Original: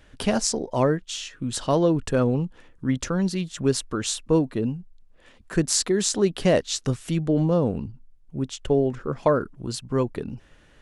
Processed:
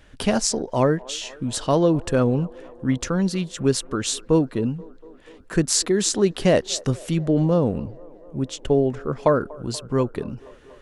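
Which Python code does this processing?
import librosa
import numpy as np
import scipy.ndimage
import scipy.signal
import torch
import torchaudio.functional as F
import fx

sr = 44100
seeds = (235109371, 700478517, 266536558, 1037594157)

y = fx.echo_wet_bandpass(x, sr, ms=240, feedback_pct=75, hz=690.0, wet_db=-21.5)
y = y * librosa.db_to_amplitude(2.0)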